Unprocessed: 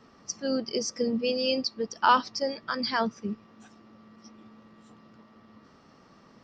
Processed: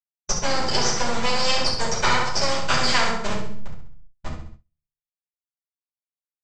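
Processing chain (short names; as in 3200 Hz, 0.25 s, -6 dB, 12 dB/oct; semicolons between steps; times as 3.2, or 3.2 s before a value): level-crossing sampler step -35 dBFS; 1.78–3.27 high shelf 5200 Hz +6 dB; compressor, threshold -30 dBFS, peak gain reduction 14.5 dB; half-wave rectifier; steep low-pass 7800 Hz 72 dB/oct; on a send: flutter echo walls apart 11.4 m, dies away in 0.53 s; on the sum: shoebox room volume 160 m³, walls furnished, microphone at 4.9 m; gate with hold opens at -39 dBFS; bell 270 Hz -13.5 dB 0.6 oct; spectral compressor 2:1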